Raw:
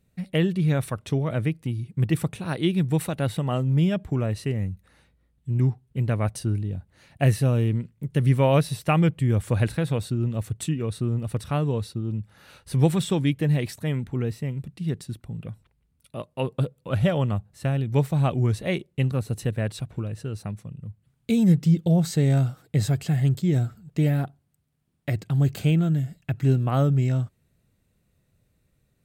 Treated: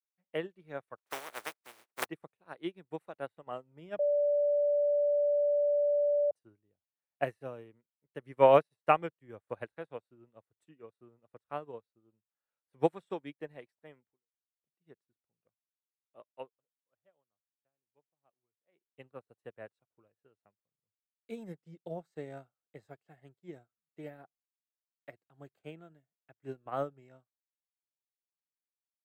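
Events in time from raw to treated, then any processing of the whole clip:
0.97–2.05 spectral contrast lowered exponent 0.16
3.99–6.31 bleep 582 Hz -20.5 dBFS
14.1–14.62 fade out exponential
16.35–18.93 dip -16.5 dB, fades 0.22 s
whole clip: three-band isolator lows -22 dB, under 360 Hz, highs -13 dB, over 2000 Hz; upward expander 2.5:1, over -51 dBFS; gain +3.5 dB

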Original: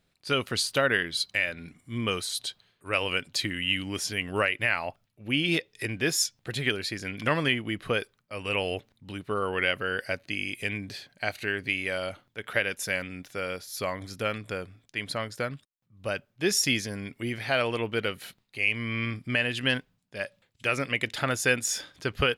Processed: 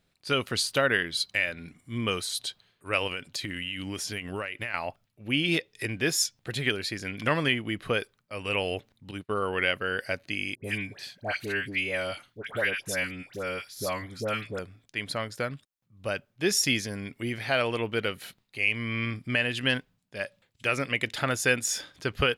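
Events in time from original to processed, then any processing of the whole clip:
3.07–4.74 compressor, threshold -29 dBFS
9.11–9.87 expander -37 dBFS
10.55–14.59 dispersion highs, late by 93 ms, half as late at 1200 Hz

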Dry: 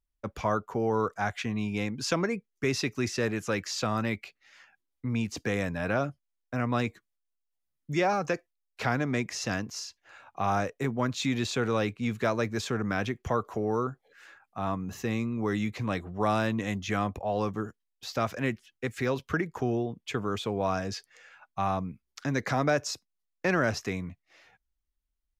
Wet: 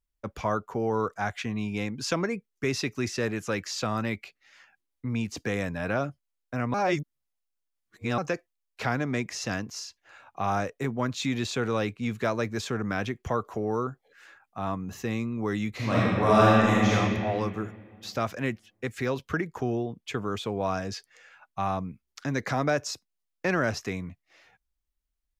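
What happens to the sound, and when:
6.74–8.18 reverse
15.71–16.92 reverb throw, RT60 2.2 s, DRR -8 dB

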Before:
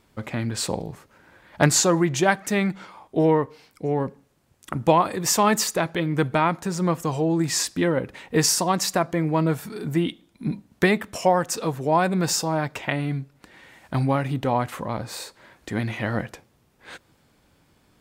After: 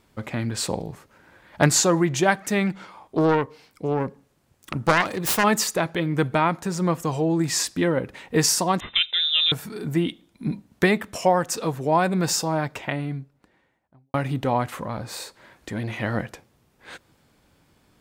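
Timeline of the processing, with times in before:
2.67–5.44 self-modulated delay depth 0.54 ms
8.8–9.52 inverted band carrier 3800 Hz
12.52–14.14 studio fade out
14.72–15.99 core saturation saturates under 450 Hz

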